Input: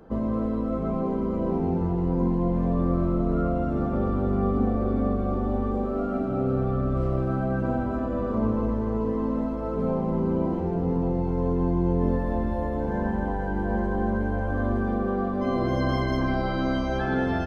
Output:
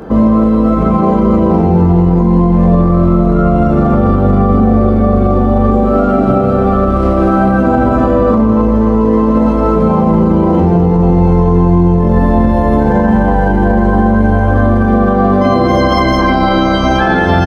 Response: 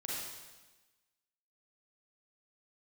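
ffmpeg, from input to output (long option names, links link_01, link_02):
-filter_complex "[0:a]highpass=47,asplit=2[link_01][link_02];[link_02]adelay=22,volume=-8.5dB[link_03];[link_01][link_03]amix=inputs=2:normalize=0,bandreject=frequency=130.9:width_type=h:width=4,bandreject=frequency=261.8:width_type=h:width=4,bandreject=frequency=392.7:width_type=h:width=4,bandreject=frequency=523.6:width_type=h:width=4,bandreject=frequency=654.5:width_type=h:width=4,alimiter=level_in=22.5dB:limit=-1dB:release=50:level=0:latency=1,volume=-1dB"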